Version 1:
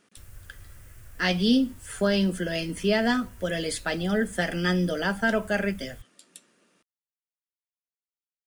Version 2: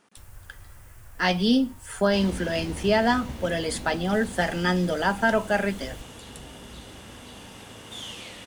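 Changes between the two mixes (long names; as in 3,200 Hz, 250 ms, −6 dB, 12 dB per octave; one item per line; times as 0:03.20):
second sound: unmuted
master: add parametric band 890 Hz +10 dB 0.69 octaves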